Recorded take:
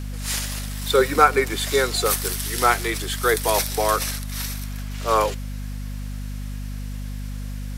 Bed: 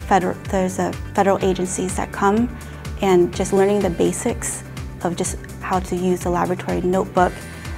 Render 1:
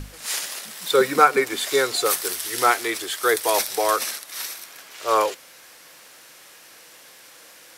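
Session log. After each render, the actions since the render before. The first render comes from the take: notches 50/100/150/200/250 Hz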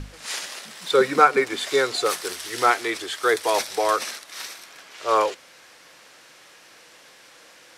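air absorption 55 m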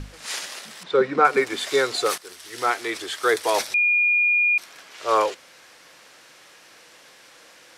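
0.83–1.25 tape spacing loss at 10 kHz 25 dB; 2.18–3.09 fade in, from -15 dB; 3.74–4.58 bleep 2430 Hz -16 dBFS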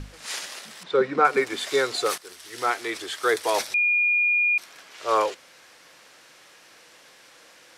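gain -2 dB

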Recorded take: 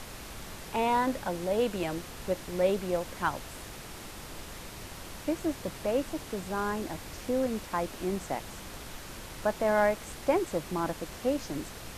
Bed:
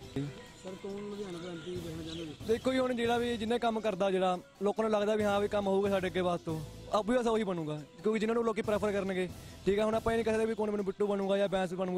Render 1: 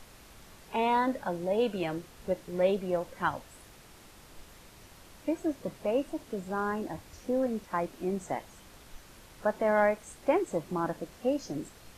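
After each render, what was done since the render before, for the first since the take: noise print and reduce 10 dB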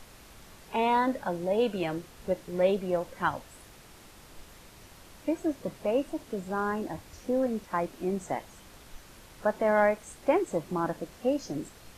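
gain +1.5 dB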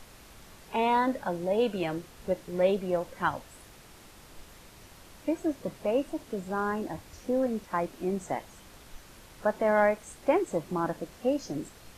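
nothing audible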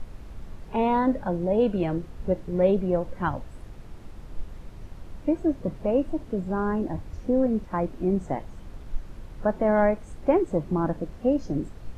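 tilt -3.5 dB/oct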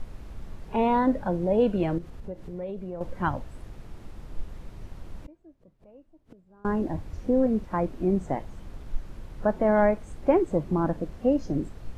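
1.98–3.01 compressor 3:1, threshold -36 dBFS; 5.25–6.65 flipped gate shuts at -31 dBFS, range -29 dB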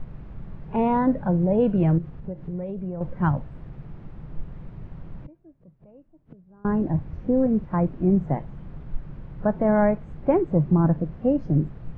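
LPF 2200 Hz 12 dB/oct; bell 150 Hz +13 dB 0.7 oct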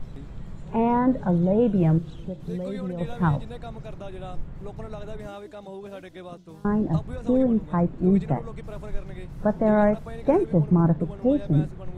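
add bed -9.5 dB

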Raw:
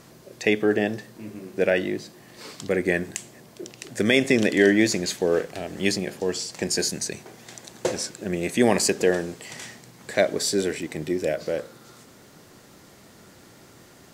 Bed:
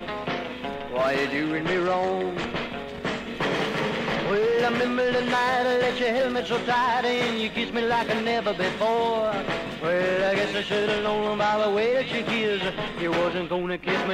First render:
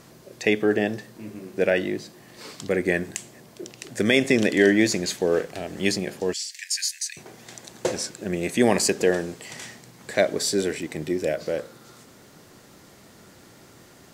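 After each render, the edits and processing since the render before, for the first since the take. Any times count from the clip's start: 6.33–7.17 steep high-pass 1700 Hz 72 dB/oct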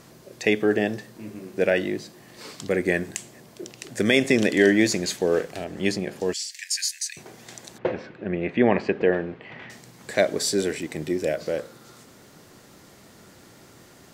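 5.64–6.16 high shelf 3600 Hz -7.5 dB; 7.78–9.7 LPF 2700 Hz 24 dB/oct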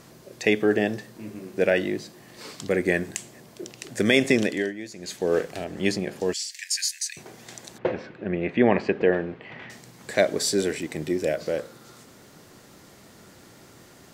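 4.31–5.37 dip -17.5 dB, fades 0.42 s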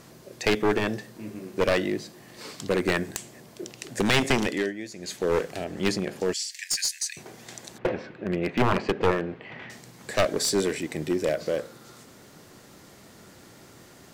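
one-sided fold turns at -18.5 dBFS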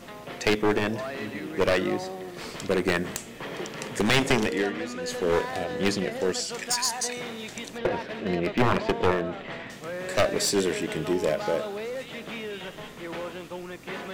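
add bed -11 dB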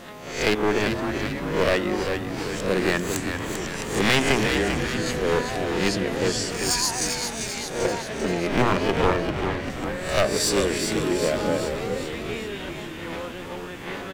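spectral swells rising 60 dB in 0.52 s; frequency-shifting echo 0.393 s, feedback 57%, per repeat -79 Hz, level -6 dB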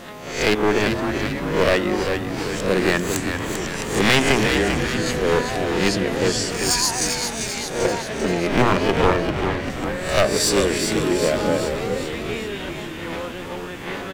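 gain +3.5 dB; limiter -3 dBFS, peak gain reduction 1 dB

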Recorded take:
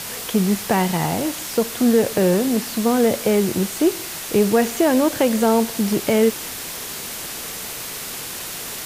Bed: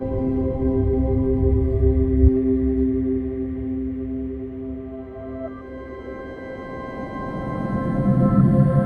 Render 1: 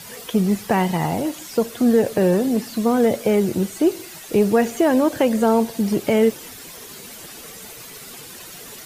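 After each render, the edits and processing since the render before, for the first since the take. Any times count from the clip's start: denoiser 11 dB, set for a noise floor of -31 dBFS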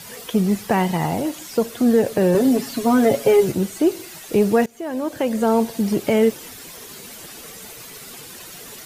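2.34–3.52 comb 7.3 ms, depth 99%; 4.66–5.6 fade in, from -23.5 dB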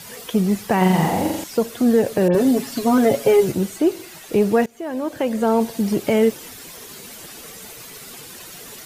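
0.77–1.44 flutter echo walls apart 7.4 m, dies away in 0.87 s; 2.28–2.98 dispersion highs, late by 64 ms, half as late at 3000 Hz; 3.76–5.61 tone controls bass -1 dB, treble -3 dB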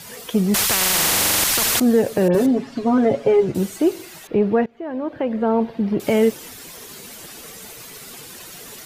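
0.54–1.8 spectral compressor 10:1; 2.46–3.55 tape spacing loss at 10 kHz 23 dB; 4.27–6 air absorption 380 m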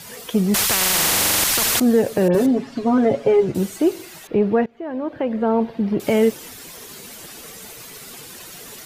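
nothing audible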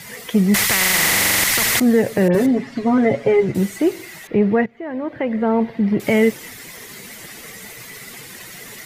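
thirty-one-band EQ 125 Hz +6 dB, 200 Hz +4 dB, 2000 Hz +12 dB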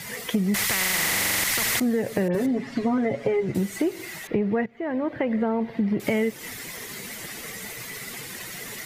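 compressor, threshold -21 dBFS, peak gain reduction 10 dB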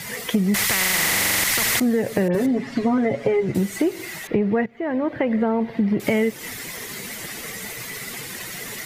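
gain +3.5 dB

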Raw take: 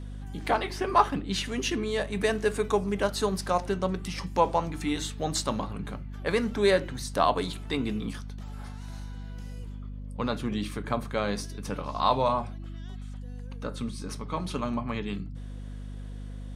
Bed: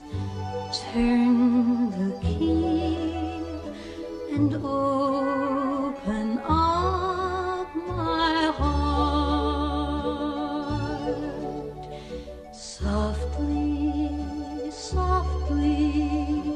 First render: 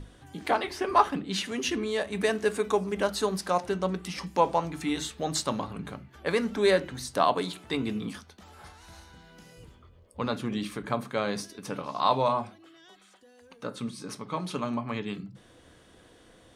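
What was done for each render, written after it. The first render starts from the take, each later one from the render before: notches 50/100/150/200/250 Hz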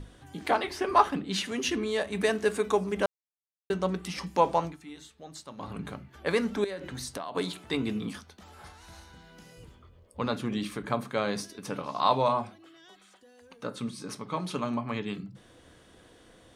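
3.06–3.7 mute; 4.65–5.69 dip -15.5 dB, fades 0.12 s; 6.64–7.35 compressor 16:1, threshold -32 dBFS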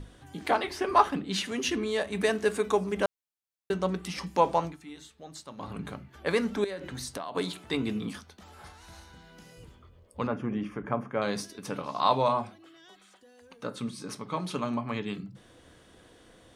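10.27–11.22 running mean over 11 samples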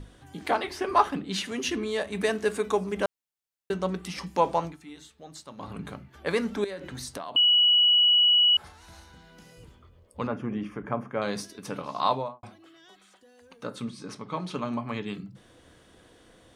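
7.36–8.57 bleep 2930 Hz -16.5 dBFS; 12.03–12.43 studio fade out; 13.85–14.72 air absorption 51 m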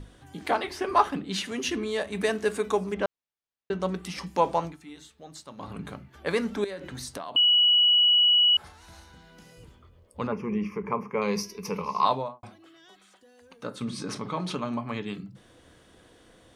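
2.94–3.8 air absorption 120 m; 10.32–12.05 ripple EQ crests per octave 0.82, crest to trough 15 dB; 13.81–14.55 fast leveller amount 50%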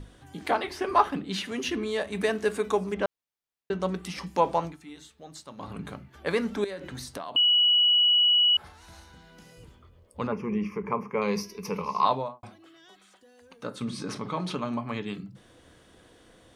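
dynamic EQ 7500 Hz, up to -6 dB, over -43 dBFS, Q 0.92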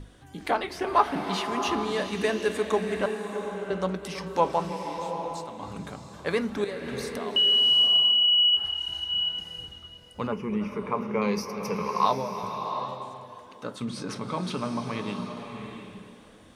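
tape echo 0.324 s, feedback 57%, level -14 dB, low-pass 4100 Hz; bloom reverb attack 0.74 s, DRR 5.5 dB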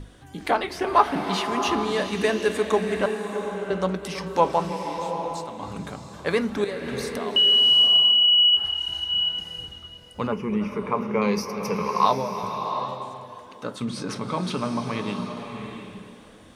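gain +3.5 dB

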